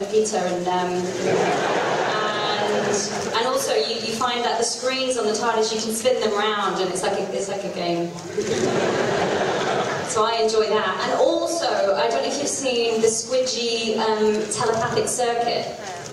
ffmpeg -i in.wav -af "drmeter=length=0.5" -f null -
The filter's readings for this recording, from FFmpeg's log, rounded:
Channel 1: DR: 9.6
Overall DR: 9.6